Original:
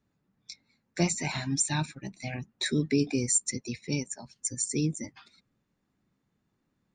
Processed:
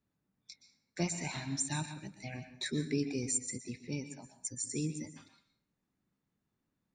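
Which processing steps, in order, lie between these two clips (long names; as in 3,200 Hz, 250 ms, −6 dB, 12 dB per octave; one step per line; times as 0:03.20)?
0:03.37–0:04.34: high-shelf EQ 4,800 Hz −9 dB
dense smooth reverb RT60 0.51 s, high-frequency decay 0.95×, pre-delay 110 ms, DRR 9.5 dB
level −7.5 dB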